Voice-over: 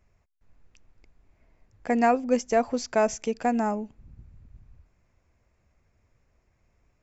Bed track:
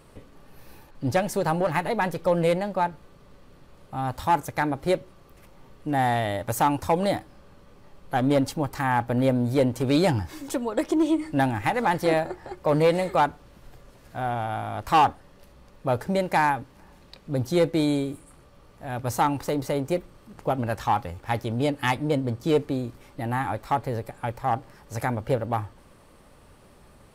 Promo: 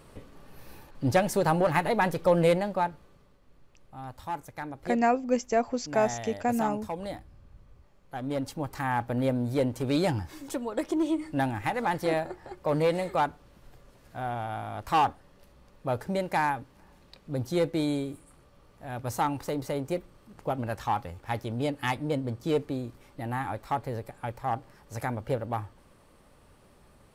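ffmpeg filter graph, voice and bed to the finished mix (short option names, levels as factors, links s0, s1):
-filter_complex "[0:a]adelay=3000,volume=0.75[s0];[1:a]volume=2.37,afade=t=out:st=2.47:d=0.93:silence=0.237137,afade=t=in:st=8.2:d=0.55:silence=0.421697[s1];[s0][s1]amix=inputs=2:normalize=0"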